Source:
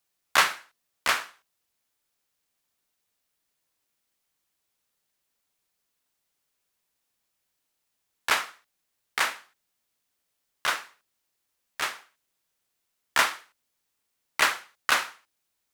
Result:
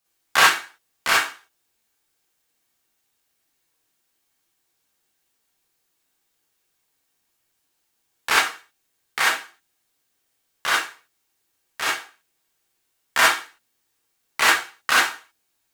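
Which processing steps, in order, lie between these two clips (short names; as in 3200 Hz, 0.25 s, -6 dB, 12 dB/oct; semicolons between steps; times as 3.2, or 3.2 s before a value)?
non-linear reverb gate 80 ms rising, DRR -5.5 dB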